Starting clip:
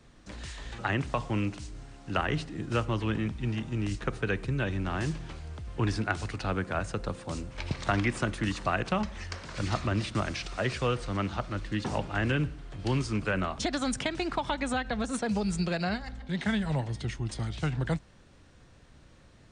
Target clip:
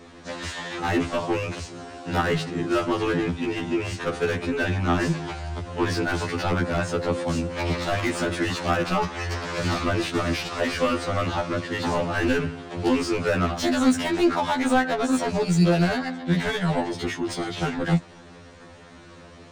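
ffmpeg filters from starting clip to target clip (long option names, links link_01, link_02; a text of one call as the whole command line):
ffmpeg -i in.wav -filter_complex "[0:a]acrossover=split=130|1800[link_01][link_02][link_03];[link_03]aeval=exprs='(mod(11.9*val(0)+1,2)-1)/11.9':channel_layout=same[link_04];[link_01][link_02][link_04]amix=inputs=3:normalize=0,asplit=2[link_05][link_06];[link_06]highpass=frequency=720:poles=1,volume=26dB,asoftclip=type=tanh:threshold=-12.5dB[link_07];[link_05][link_07]amix=inputs=2:normalize=0,lowpass=frequency=6500:poles=1,volume=-6dB,tiltshelf=frequency=770:gain=5.5,afftfilt=real='re*2*eq(mod(b,4),0)':imag='im*2*eq(mod(b,4),0)':win_size=2048:overlap=0.75" out.wav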